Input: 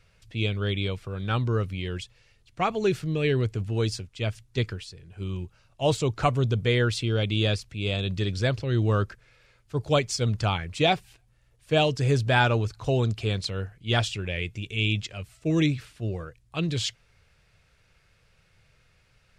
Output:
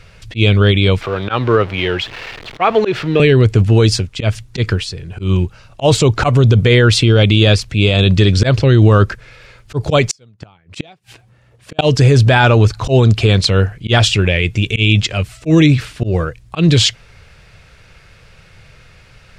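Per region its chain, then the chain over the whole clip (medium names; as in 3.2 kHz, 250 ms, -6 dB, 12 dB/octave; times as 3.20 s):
1.01–3.20 s: jump at every zero crossing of -39 dBFS + three-band isolator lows -13 dB, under 320 Hz, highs -20 dB, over 4.2 kHz
10.09–11.79 s: high-pass 110 Hz + inverted gate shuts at -21 dBFS, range -38 dB + tape noise reduction on one side only decoder only
whole clip: treble shelf 8 kHz -7 dB; slow attack 130 ms; loudness maximiser +20 dB; trim -1 dB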